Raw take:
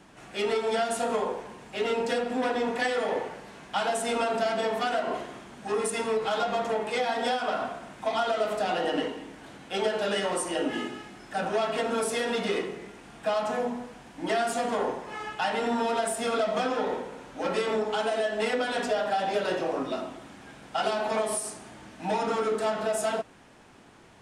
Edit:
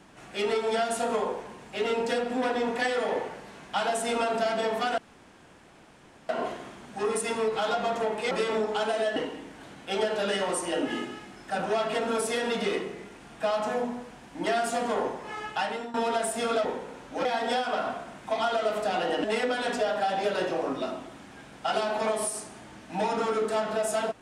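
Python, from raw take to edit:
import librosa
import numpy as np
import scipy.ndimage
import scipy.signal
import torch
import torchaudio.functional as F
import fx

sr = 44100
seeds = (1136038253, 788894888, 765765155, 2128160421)

y = fx.edit(x, sr, fx.insert_room_tone(at_s=4.98, length_s=1.31),
    fx.swap(start_s=7.0, length_s=1.99, other_s=17.49, other_length_s=0.85),
    fx.fade_out_to(start_s=15.41, length_s=0.36, floor_db=-18.5),
    fx.cut(start_s=16.48, length_s=0.41), tone=tone)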